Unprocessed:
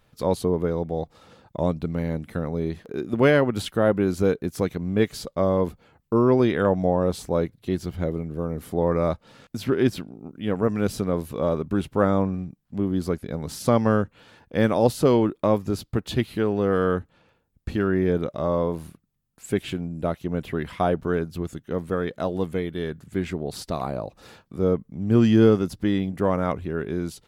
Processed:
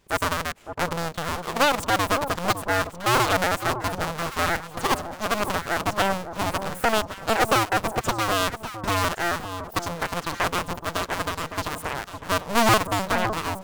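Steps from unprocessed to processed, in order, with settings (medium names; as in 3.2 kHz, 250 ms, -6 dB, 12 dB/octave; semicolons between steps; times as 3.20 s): cycle switcher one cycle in 2, inverted; speed mistake 7.5 ips tape played at 15 ips; echo whose repeats swap between lows and highs 559 ms, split 1.1 kHz, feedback 51%, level -8 dB; trim -1.5 dB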